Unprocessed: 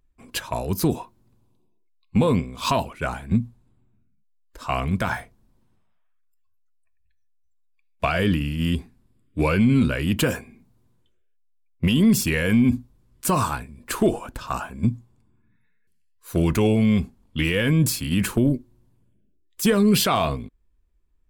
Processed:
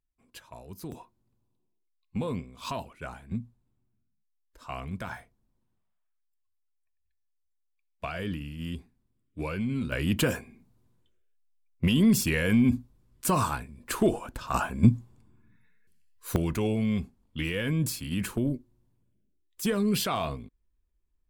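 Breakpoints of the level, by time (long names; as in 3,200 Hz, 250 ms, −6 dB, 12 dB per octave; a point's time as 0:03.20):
−19 dB
from 0:00.92 −12.5 dB
from 0:09.92 −4 dB
from 0:14.54 +2.5 dB
from 0:16.36 −8.5 dB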